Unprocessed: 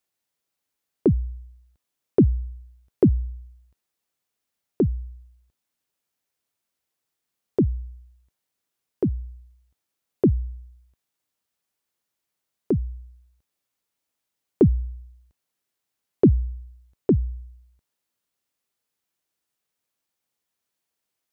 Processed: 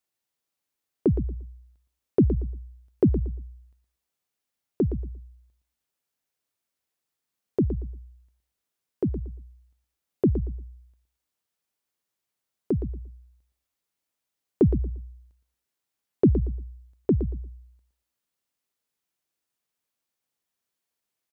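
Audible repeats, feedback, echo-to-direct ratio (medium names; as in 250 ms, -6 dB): 2, 22%, -10.0 dB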